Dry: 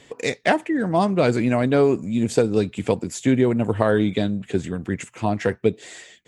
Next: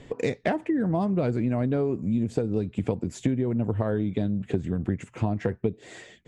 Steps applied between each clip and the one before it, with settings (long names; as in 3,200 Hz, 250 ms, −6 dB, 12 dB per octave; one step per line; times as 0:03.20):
spectral tilt −3 dB per octave
downward compressor 10 to 1, threshold −22 dBFS, peak gain reduction 15 dB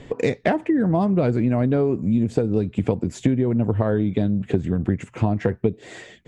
high-shelf EQ 6,000 Hz −4.5 dB
level +5.5 dB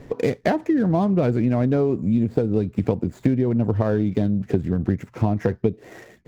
running median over 15 samples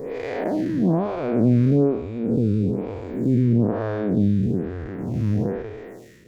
spectrum smeared in time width 299 ms
phaser with staggered stages 1.1 Hz
level +5.5 dB